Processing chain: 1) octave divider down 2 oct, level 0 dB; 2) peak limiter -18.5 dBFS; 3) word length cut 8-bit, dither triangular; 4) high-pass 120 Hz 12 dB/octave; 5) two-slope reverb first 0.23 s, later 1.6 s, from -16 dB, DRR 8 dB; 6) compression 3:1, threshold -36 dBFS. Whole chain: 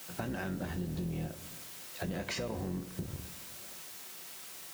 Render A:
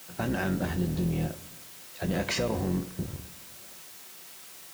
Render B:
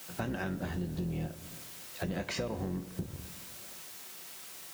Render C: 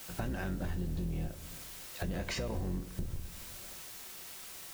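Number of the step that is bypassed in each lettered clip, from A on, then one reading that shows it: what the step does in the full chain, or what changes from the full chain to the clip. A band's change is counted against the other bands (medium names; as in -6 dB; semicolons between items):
6, crest factor change -2.0 dB; 2, mean gain reduction 3.0 dB; 4, 125 Hz band +2.0 dB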